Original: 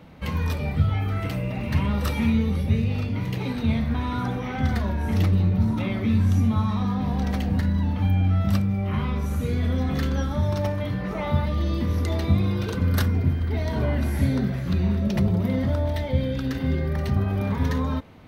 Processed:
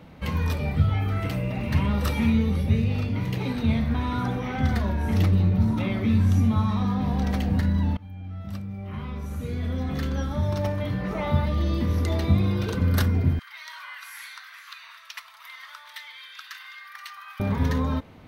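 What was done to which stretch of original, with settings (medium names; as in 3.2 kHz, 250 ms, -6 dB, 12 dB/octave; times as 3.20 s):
7.97–11.08 s: fade in, from -23 dB
13.39–17.40 s: elliptic high-pass 1.1 kHz, stop band 60 dB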